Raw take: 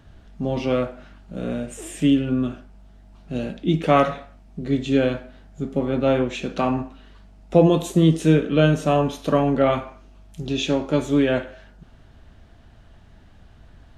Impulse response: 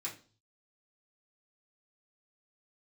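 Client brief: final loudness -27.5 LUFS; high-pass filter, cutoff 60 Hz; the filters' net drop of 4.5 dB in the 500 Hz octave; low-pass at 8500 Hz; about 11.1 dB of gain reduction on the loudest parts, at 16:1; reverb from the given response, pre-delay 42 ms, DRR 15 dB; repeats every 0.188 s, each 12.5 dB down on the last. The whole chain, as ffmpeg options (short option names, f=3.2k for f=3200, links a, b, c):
-filter_complex "[0:a]highpass=60,lowpass=8.5k,equalizer=f=500:t=o:g=-5.5,acompressor=threshold=-23dB:ratio=16,aecho=1:1:188|376|564:0.237|0.0569|0.0137,asplit=2[a][b];[1:a]atrim=start_sample=2205,adelay=42[c];[b][c]afir=irnorm=-1:irlink=0,volume=-15dB[d];[a][d]amix=inputs=2:normalize=0,volume=2.5dB"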